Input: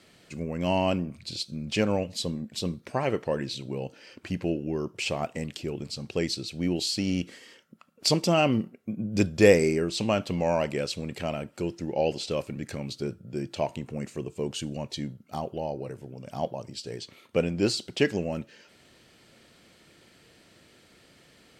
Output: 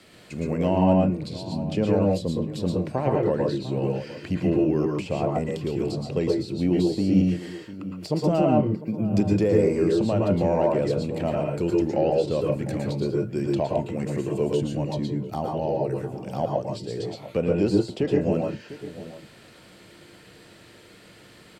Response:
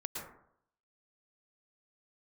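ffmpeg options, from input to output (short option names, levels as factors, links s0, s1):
-filter_complex "[0:a]asplit=2[s0][s1];[s1]asoftclip=type=tanh:threshold=0.106,volume=0.531[s2];[s0][s2]amix=inputs=2:normalize=0,alimiter=limit=0.2:level=0:latency=1:release=237,equalizer=f=6100:w=2.8:g=-3.5[s3];[1:a]atrim=start_sample=2205,atrim=end_sample=6615[s4];[s3][s4]afir=irnorm=-1:irlink=0,acrossover=split=340|970[s5][s6][s7];[s7]acompressor=threshold=0.00501:ratio=6[s8];[s5][s6][s8]amix=inputs=3:normalize=0,asplit=2[s9][s10];[s10]adelay=699.7,volume=0.178,highshelf=f=4000:g=-15.7[s11];[s9][s11]amix=inputs=2:normalize=0,volume=1.68"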